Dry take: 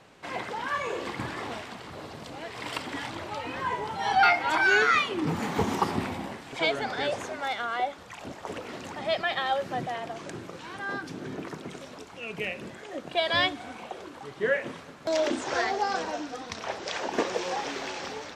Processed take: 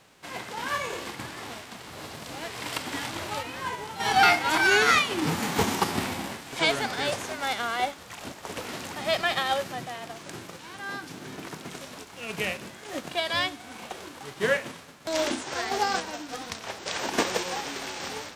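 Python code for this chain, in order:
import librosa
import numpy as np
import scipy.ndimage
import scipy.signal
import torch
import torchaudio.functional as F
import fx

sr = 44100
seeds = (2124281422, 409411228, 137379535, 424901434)

y = fx.envelope_flatten(x, sr, power=0.6)
y = fx.tremolo_random(y, sr, seeds[0], hz=3.5, depth_pct=55)
y = y * 10.0 ** (3.0 / 20.0)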